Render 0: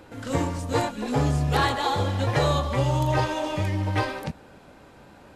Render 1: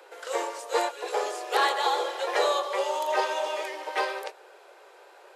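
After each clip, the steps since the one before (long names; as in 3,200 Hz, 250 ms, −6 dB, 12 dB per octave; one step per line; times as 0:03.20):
Butterworth high-pass 360 Hz 96 dB per octave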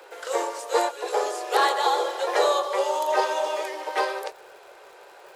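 dynamic equaliser 2,500 Hz, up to −5 dB, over −44 dBFS, Q 1.1
surface crackle 140 per second −47 dBFS
level +4 dB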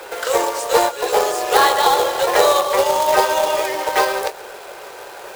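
in parallel at +2.5 dB: downward compressor 12 to 1, threshold −32 dBFS, peak gain reduction 16.5 dB
on the sum: log-companded quantiser 4 bits
level +5 dB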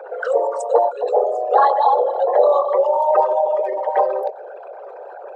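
spectral envelope exaggerated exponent 3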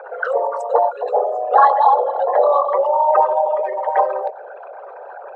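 resonant band-pass 1,300 Hz, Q 0.96
level +5 dB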